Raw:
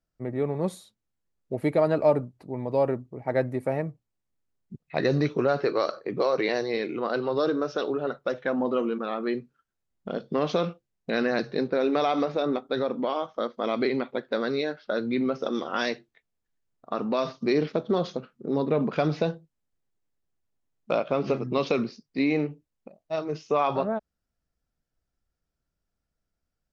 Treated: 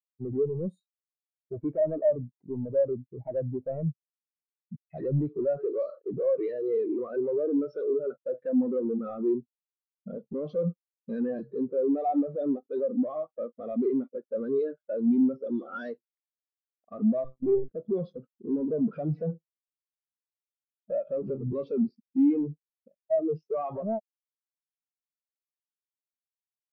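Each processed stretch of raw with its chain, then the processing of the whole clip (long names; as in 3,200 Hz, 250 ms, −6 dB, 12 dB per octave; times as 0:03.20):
0:17.24–0:17.72: low-shelf EQ 250 Hz +8.5 dB + one-pitch LPC vocoder at 8 kHz 130 Hz
whole clip: downward compressor 2.5 to 1, threshold −30 dBFS; leveller curve on the samples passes 5; every bin expanded away from the loudest bin 2.5 to 1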